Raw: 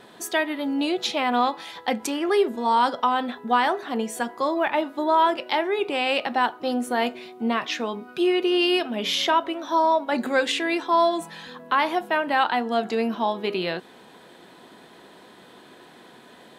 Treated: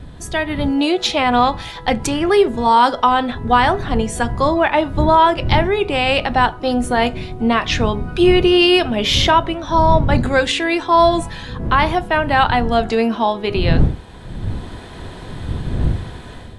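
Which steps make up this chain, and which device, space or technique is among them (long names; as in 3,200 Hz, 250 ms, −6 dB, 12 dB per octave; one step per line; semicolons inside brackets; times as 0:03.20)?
smartphone video outdoors (wind on the microphone 120 Hz −30 dBFS; automatic gain control; AAC 96 kbit/s 24,000 Hz)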